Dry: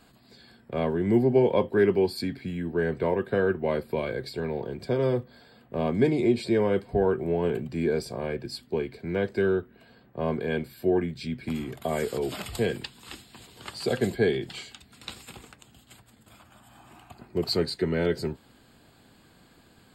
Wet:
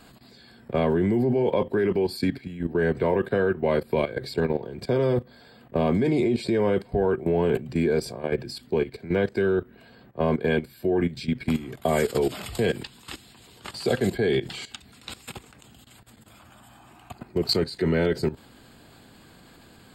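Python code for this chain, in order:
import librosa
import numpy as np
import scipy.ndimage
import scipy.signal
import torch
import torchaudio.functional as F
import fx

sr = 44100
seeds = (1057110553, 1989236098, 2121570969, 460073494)

y = fx.level_steps(x, sr, step_db=15)
y = F.gain(torch.from_numpy(y), 8.5).numpy()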